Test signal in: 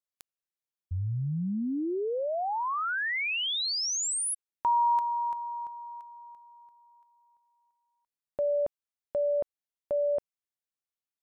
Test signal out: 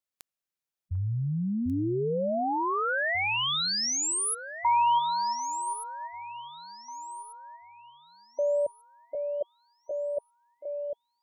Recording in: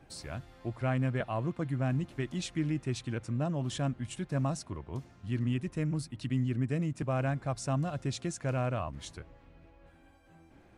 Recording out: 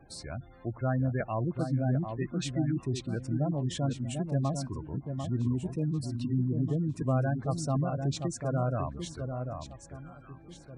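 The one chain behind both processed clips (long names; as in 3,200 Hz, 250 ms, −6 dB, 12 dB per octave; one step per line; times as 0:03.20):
gate on every frequency bin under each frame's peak −20 dB strong
delay that swaps between a low-pass and a high-pass 745 ms, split 1,300 Hz, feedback 53%, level −6 dB
level +1.5 dB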